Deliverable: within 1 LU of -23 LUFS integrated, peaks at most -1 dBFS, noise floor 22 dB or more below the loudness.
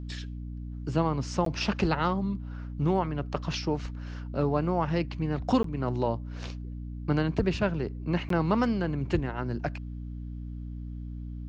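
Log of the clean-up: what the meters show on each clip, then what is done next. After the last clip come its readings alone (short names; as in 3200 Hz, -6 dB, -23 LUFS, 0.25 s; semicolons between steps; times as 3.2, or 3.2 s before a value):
dropouts 3; longest dropout 13 ms; hum 60 Hz; harmonics up to 300 Hz; hum level -35 dBFS; loudness -30.5 LUFS; peak -12.5 dBFS; loudness target -23.0 LUFS
-> interpolate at 1.45/5.63/8.29, 13 ms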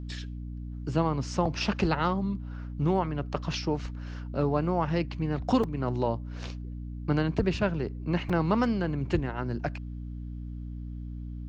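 dropouts 0; hum 60 Hz; harmonics up to 300 Hz; hum level -35 dBFS
-> notches 60/120/180/240/300 Hz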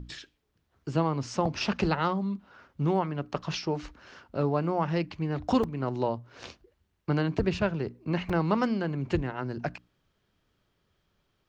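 hum none; loudness -30.0 LUFS; peak -13.0 dBFS; loudness target -23.0 LUFS
-> gain +7 dB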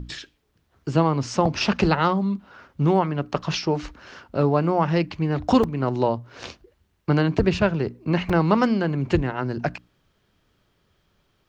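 loudness -23.0 LUFS; peak -6.0 dBFS; noise floor -68 dBFS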